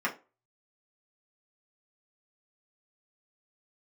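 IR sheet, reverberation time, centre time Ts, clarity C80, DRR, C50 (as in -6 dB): 0.30 s, 12 ms, 21.5 dB, -4.5 dB, 15.0 dB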